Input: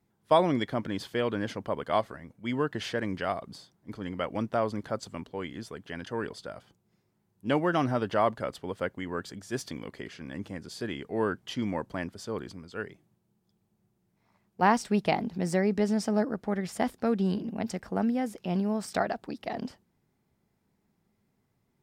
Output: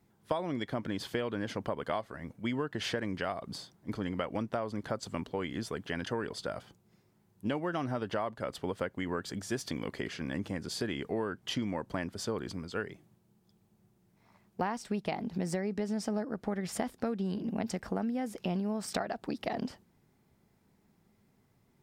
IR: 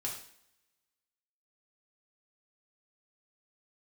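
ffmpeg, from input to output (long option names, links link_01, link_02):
-af "acompressor=threshold=-35dB:ratio=10,volume=5dB"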